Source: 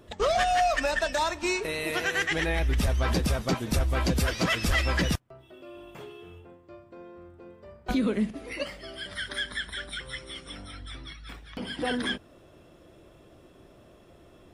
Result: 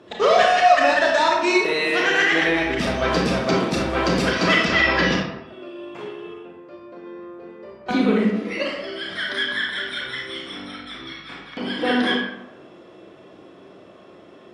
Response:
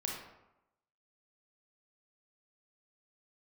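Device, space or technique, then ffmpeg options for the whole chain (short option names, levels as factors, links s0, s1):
supermarket ceiling speaker: -filter_complex "[0:a]highpass=210,lowpass=5000[s0];[1:a]atrim=start_sample=2205[s1];[s0][s1]afir=irnorm=-1:irlink=0,asettb=1/sr,asplit=3[s2][s3][s4];[s2]atrim=end=4.654[s5];[s3]atrim=start=4.65:end=5.47,asetpts=PTS-STARTPTS,afade=t=in:d=0.004:c=qsin,afade=t=out:st=0.816:d=0.004:c=qsin,lowpass=f=6100:w=0.5412,lowpass=f=6100:w=1.3066[s6];[s4]atrim=start=5.466[s7];[s5][s6]acrossfade=d=0.004:c1=hsin:c2=qsin[s8];[s8][s7]acrossfade=d=0.004:c1=qsin:c2=hsin,volume=2.51"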